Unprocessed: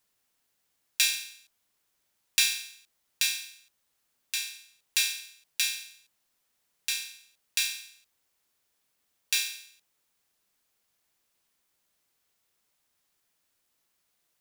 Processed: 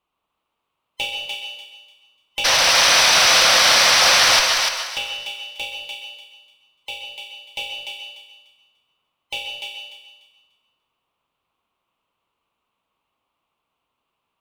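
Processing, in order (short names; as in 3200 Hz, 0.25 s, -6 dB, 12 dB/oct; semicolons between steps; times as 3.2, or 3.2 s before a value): band-swap scrambler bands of 1000 Hz; EQ curve 720 Hz 0 dB, 1100 Hz +8 dB, 1700 Hz -12 dB, 2800 Hz +1 dB, 5300 Hz -20 dB; painted sound noise, 2.44–4.4, 490–6200 Hz -18 dBFS; tube stage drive 16 dB, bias 0.45; thinning echo 0.295 s, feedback 25%, high-pass 720 Hz, level -4 dB; on a send at -5 dB: reverb RT60 0.80 s, pre-delay 0.118 s; on the sum: gain +5.5 dB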